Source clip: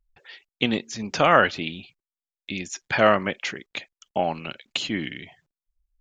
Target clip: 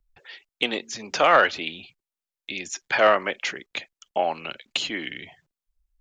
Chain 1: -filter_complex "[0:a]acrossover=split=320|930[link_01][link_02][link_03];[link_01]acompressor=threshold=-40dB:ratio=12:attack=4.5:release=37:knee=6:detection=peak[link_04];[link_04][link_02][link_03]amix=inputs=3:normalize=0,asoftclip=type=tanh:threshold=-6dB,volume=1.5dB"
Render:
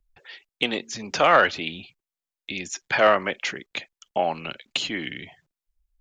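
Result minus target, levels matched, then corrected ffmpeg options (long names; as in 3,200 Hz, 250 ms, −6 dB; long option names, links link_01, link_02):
downward compressor: peak gain reduction −9 dB
-filter_complex "[0:a]acrossover=split=320|930[link_01][link_02][link_03];[link_01]acompressor=threshold=-50dB:ratio=12:attack=4.5:release=37:knee=6:detection=peak[link_04];[link_04][link_02][link_03]amix=inputs=3:normalize=0,asoftclip=type=tanh:threshold=-6dB,volume=1.5dB"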